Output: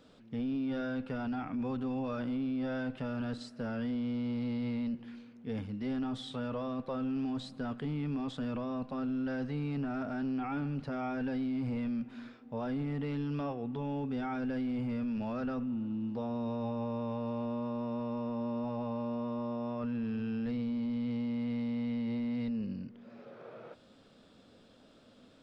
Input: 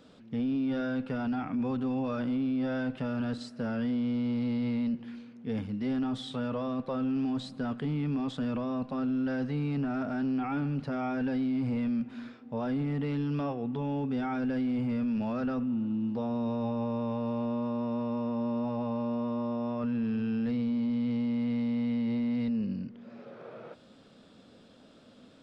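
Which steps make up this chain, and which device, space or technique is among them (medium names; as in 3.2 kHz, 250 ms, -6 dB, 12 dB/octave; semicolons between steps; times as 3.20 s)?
low shelf boost with a cut just above (bass shelf 70 Hz +5.5 dB; peaking EQ 180 Hz -3 dB 1.2 oct); trim -3 dB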